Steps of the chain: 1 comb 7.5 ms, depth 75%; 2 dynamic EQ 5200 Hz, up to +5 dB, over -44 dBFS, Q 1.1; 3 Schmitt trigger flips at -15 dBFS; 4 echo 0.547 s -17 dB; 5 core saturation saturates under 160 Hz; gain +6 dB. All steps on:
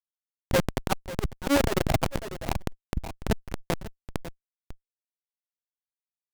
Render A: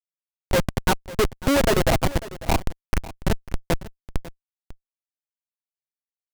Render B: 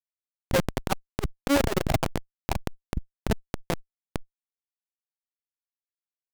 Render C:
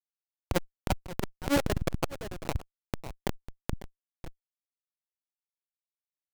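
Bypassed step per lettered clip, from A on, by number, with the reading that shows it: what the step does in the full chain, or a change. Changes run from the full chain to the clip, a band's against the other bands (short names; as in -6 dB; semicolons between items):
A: 5, crest factor change -6.0 dB; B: 4, momentary loudness spread change -2 LU; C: 1, crest factor change +2.0 dB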